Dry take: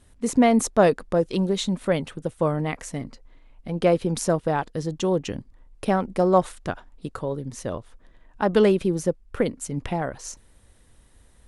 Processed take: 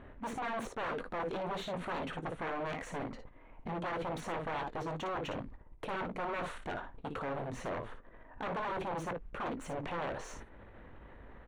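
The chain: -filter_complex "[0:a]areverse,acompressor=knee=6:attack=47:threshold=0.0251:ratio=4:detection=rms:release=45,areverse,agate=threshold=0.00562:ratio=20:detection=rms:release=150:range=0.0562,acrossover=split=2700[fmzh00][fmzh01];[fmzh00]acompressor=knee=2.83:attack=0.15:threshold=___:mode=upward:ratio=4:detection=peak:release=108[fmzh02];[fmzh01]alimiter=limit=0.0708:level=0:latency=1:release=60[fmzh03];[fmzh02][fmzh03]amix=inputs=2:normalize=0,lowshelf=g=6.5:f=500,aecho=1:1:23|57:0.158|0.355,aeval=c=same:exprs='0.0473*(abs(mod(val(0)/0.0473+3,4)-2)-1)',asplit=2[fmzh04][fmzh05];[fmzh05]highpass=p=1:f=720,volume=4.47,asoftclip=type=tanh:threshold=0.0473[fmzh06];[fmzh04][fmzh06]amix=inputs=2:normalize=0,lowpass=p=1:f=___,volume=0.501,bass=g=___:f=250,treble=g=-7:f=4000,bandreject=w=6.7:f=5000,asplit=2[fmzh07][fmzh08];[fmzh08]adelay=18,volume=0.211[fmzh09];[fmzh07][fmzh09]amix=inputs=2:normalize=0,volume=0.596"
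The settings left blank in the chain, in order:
0.0224, 2300, -2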